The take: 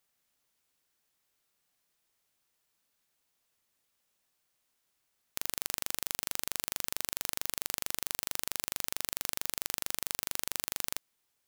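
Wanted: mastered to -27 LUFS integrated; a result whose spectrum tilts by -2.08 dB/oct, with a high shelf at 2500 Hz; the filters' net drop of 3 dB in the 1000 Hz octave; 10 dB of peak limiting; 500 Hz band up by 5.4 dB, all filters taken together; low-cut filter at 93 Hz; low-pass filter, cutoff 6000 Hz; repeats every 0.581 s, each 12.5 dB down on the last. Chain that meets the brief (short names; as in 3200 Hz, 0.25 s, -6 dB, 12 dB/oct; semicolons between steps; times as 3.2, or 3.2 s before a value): HPF 93 Hz; LPF 6000 Hz; bell 500 Hz +8.5 dB; bell 1000 Hz -5.5 dB; high shelf 2500 Hz -6.5 dB; limiter -27.5 dBFS; feedback echo 0.581 s, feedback 24%, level -12.5 dB; gain +26.5 dB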